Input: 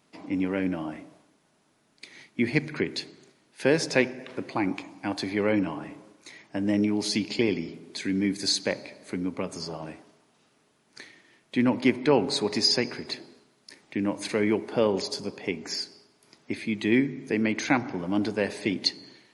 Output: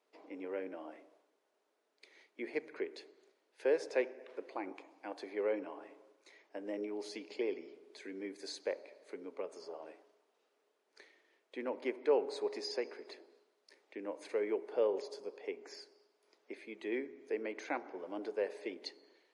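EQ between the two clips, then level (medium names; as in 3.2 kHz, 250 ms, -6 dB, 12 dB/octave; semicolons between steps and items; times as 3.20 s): treble shelf 8.1 kHz -11 dB; dynamic bell 4.2 kHz, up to -5 dB, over -47 dBFS, Q 0.88; ladder high-pass 380 Hz, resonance 50%; -4.0 dB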